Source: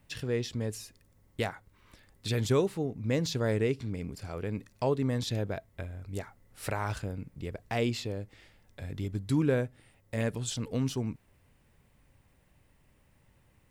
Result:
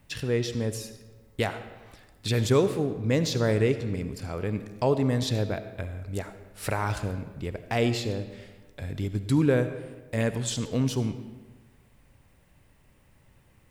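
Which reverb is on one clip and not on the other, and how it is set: algorithmic reverb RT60 1.3 s, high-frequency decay 0.7×, pre-delay 30 ms, DRR 10.5 dB; trim +4.5 dB

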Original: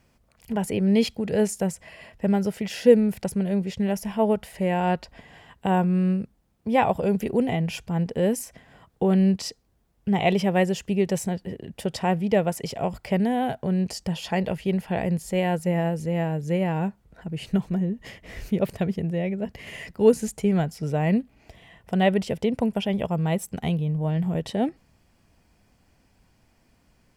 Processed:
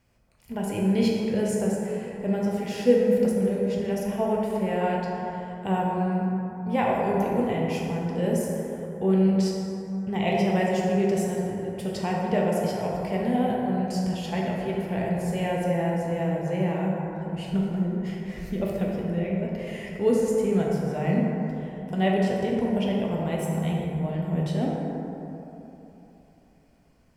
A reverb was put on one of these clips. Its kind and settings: plate-style reverb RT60 3.3 s, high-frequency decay 0.35×, DRR -3.5 dB; trim -6.5 dB

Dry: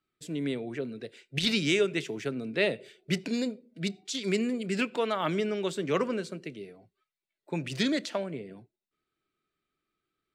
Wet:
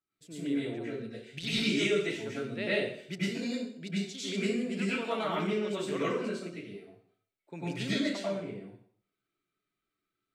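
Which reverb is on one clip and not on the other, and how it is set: plate-style reverb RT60 0.57 s, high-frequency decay 0.95×, pre-delay 85 ms, DRR -9 dB; trim -11.5 dB

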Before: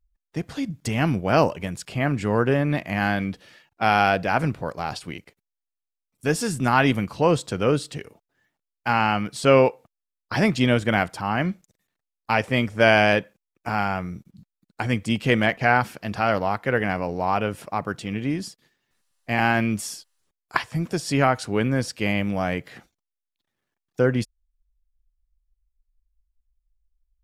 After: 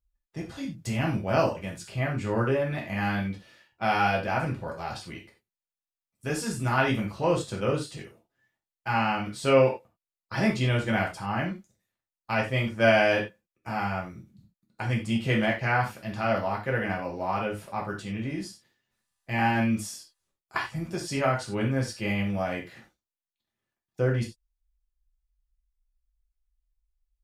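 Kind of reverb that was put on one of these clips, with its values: gated-style reverb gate 120 ms falling, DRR -2.5 dB; trim -9.5 dB

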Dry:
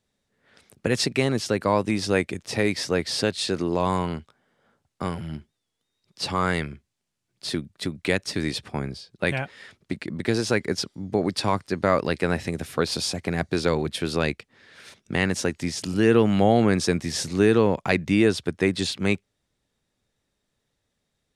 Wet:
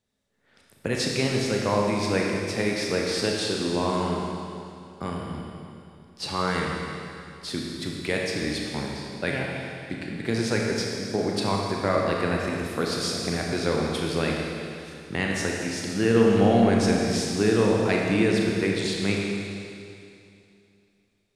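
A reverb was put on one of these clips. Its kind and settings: Schroeder reverb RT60 2.6 s, combs from 27 ms, DRR -1.5 dB; trim -4.5 dB

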